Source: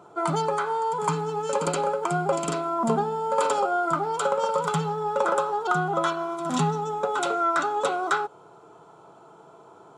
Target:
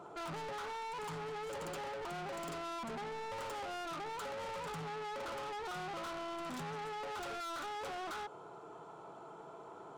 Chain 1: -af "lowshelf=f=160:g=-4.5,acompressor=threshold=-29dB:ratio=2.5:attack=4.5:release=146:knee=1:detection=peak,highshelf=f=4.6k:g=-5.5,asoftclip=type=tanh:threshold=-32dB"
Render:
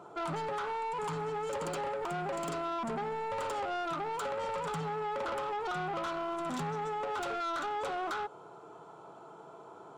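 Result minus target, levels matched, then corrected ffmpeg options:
soft clip: distortion -5 dB
-af "lowshelf=f=160:g=-4.5,acompressor=threshold=-29dB:ratio=2.5:attack=4.5:release=146:knee=1:detection=peak,highshelf=f=4.6k:g=-5.5,asoftclip=type=tanh:threshold=-41dB"

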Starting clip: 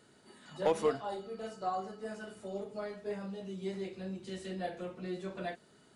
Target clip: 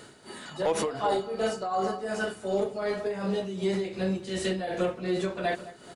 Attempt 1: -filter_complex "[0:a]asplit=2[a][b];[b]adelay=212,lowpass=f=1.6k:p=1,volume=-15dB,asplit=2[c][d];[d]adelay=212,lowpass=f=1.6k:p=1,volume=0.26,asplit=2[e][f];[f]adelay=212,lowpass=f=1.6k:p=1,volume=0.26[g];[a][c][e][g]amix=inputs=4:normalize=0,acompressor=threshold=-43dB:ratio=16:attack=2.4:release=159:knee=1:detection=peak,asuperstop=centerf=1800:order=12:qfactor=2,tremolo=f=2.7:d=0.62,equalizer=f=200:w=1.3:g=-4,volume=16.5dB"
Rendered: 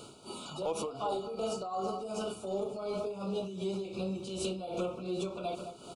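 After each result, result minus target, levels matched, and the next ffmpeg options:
2000 Hz band -9.5 dB; compressor: peak gain reduction +7.5 dB
-filter_complex "[0:a]asplit=2[a][b];[b]adelay=212,lowpass=f=1.6k:p=1,volume=-15dB,asplit=2[c][d];[d]adelay=212,lowpass=f=1.6k:p=1,volume=0.26,asplit=2[e][f];[f]adelay=212,lowpass=f=1.6k:p=1,volume=0.26[g];[a][c][e][g]amix=inputs=4:normalize=0,acompressor=threshold=-43dB:ratio=16:attack=2.4:release=159:knee=1:detection=peak,tremolo=f=2.7:d=0.62,equalizer=f=200:w=1.3:g=-4,volume=16.5dB"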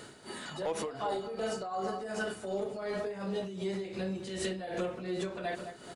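compressor: peak gain reduction +7.5 dB
-filter_complex "[0:a]asplit=2[a][b];[b]adelay=212,lowpass=f=1.6k:p=1,volume=-15dB,asplit=2[c][d];[d]adelay=212,lowpass=f=1.6k:p=1,volume=0.26,asplit=2[e][f];[f]adelay=212,lowpass=f=1.6k:p=1,volume=0.26[g];[a][c][e][g]amix=inputs=4:normalize=0,acompressor=threshold=-35dB:ratio=16:attack=2.4:release=159:knee=1:detection=peak,tremolo=f=2.7:d=0.62,equalizer=f=200:w=1.3:g=-4,volume=16.5dB"

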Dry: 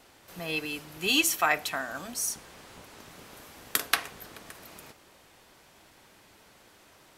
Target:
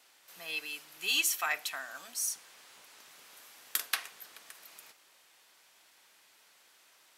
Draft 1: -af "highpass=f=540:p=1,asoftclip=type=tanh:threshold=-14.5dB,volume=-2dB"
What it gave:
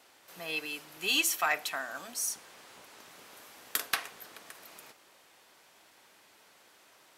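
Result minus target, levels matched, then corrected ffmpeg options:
500 Hz band +6.5 dB
-af "highpass=f=2k:p=1,asoftclip=type=tanh:threshold=-14.5dB,volume=-2dB"

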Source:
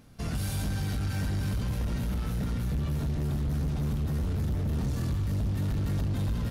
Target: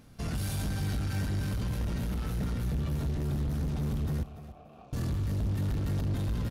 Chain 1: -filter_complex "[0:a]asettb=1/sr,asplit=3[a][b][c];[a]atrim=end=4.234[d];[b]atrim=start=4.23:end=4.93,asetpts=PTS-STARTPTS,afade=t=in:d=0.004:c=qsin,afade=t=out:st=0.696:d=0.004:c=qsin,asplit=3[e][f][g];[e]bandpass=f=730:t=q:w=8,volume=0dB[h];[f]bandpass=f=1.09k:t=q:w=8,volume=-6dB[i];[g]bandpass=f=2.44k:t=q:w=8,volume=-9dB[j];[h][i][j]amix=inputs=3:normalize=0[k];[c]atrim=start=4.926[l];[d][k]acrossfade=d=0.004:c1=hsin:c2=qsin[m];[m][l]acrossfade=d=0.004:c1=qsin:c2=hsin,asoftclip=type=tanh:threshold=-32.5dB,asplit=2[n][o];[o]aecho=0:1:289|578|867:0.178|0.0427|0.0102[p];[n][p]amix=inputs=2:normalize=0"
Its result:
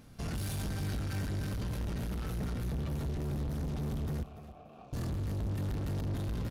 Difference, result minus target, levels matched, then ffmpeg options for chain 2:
soft clip: distortion +10 dB
-filter_complex "[0:a]asettb=1/sr,asplit=3[a][b][c];[a]atrim=end=4.234[d];[b]atrim=start=4.23:end=4.93,asetpts=PTS-STARTPTS,afade=t=in:d=0.004:c=qsin,afade=t=out:st=0.696:d=0.004:c=qsin,asplit=3[e][f][g];[e]bandpass=f=730:t=q:w=8,volume=0dB[h];[f]bandpass=f=1.09k:t=q:w=8,volume=-6dB[i];[g]bandpass=f=2.44k:t=q:w=8,volume=-9dB[j];[h][i][j]amix=inputs=3:normalize=0[k];[c]atrim=start=4.926[l];[d][k]acrossfade=d=0.004:c1=hsin:c2=qsin[m];[m][l]acrossfade=d=0.004:c1=qsin:c2=hsin,asoftclip=type=tanh:threshold=-25dB,asplit=2[n][o];[o]aecho=0:1:289|578|867:0.178|0.0427|0.0102[p];[n][p]amix=inputs=2:normalize=0"

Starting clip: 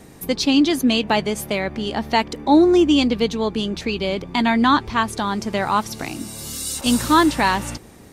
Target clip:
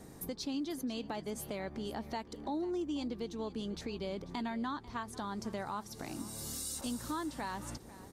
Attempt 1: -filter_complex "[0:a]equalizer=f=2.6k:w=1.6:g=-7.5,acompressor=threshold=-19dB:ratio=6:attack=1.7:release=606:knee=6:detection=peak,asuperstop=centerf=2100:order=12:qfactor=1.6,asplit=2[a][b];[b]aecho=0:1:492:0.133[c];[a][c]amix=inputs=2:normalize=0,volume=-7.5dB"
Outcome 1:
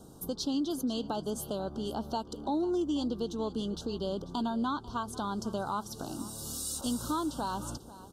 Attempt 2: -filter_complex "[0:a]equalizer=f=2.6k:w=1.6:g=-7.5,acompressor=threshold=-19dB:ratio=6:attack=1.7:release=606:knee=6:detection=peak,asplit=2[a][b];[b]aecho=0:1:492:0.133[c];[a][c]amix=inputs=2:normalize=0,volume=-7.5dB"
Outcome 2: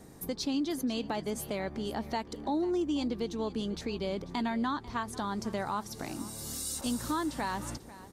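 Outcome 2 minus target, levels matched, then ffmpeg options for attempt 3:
compressor: peak gain reduction -6 dB
-filter_complex "[0:a]equalizer=f=2.6k:w=1.6:g=-7.5,acompressor=threshold=-26dB:ratio=6:attack=1.7:release=606:knee=6:detection=peak,asplit=2[a][b];[b]aecho=0:1:492:0.133[c];[a][c]amix=inputs=2:normalize=0,volume=-7.5dB"

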